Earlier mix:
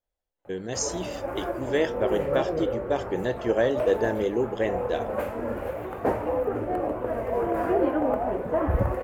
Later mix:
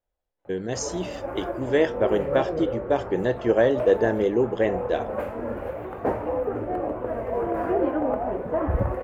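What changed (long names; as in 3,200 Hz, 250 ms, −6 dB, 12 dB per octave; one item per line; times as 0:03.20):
speech +4.0 dB
master: add high-shelf EQ 3,700 Hz −9 dB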